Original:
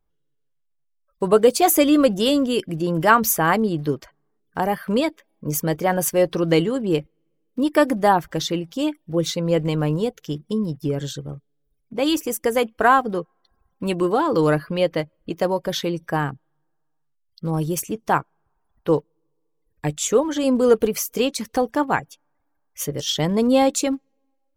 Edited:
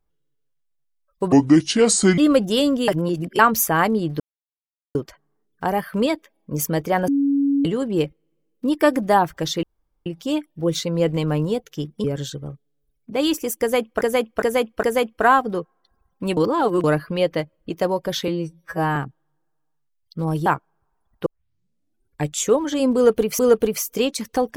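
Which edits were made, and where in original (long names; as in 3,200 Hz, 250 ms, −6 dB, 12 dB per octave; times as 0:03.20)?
0:01.32–0:01.87: play speed 64%
0:02.57–0:03.08: reverse
0:03.89: splice in silence 0.75 s
0:06.02–0:06.59: beep over 280 Hz −15.5 dBFS
0:08.57: splice in room tone 0.43 s
0:10.55–0:10.87: remove
0:12.43–0:12.84: repeat, 4 plays
0:13.97–0:14.44: reverse
0:15.88–0:16.22: time-stretch 2×
0:17.72–0:18.10: remove
0:18.90: tape start 0.96 s
0:20.59–0:21.03: repeat, 2 plays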